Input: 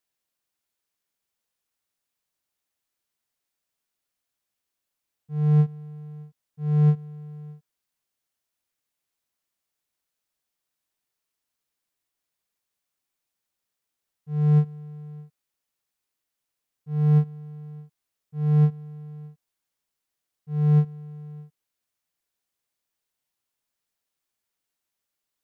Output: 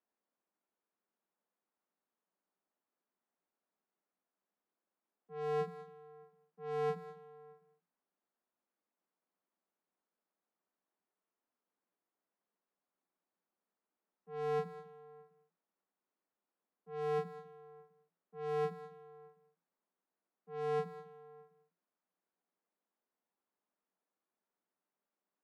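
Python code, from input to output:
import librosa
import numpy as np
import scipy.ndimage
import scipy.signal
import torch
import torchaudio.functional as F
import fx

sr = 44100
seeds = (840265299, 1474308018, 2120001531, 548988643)

p1 = scipy.signal.sosfilt(scipy.signal.cheby1(10, 1.0, 170.0, 'highpass', fs=sr, output='sos'), x)
p2 = fx.env_lowpass(p1, sr, base_hz=1100.0, full_db=-38.0)
p3 = p2 + fx.echo_single(p2, sr, ms=203, db=-15.5, dry=0)
y = F.gain(torch.from_numpy(p3), 2.0).numpy()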